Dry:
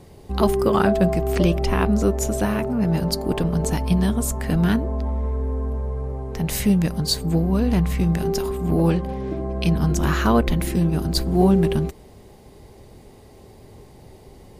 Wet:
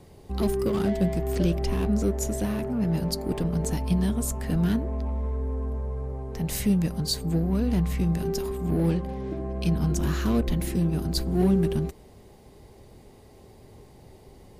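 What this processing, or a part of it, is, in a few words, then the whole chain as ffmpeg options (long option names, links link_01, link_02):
one-band saturation: -filter_complex "[0:a]acrossover=split=460|3700[link_01][link_02][link_03];[link_02]asoftclip=type=tanh:threshold=-31.5dB[link_04];[link_01][link_04][link_03]amix=inputs=3:normalize=0,volume=-4.5dB"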